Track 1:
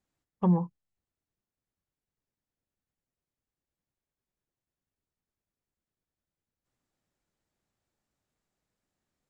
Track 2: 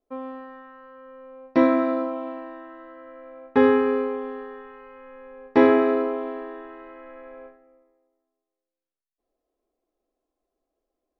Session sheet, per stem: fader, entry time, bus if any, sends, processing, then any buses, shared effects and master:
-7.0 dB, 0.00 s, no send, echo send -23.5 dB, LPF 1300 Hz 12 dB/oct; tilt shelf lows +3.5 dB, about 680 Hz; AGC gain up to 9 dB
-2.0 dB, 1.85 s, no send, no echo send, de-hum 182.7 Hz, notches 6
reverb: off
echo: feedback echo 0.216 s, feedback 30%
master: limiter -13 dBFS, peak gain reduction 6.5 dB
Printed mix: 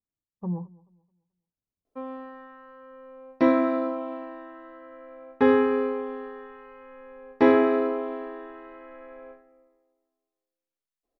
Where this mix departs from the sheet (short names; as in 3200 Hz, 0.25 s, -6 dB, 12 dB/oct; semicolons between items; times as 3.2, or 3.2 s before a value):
stem 1 -7.0 dB -> -15.0 dB; master: missing limiter -13 dBFS, peak gain reduction 6.5 dB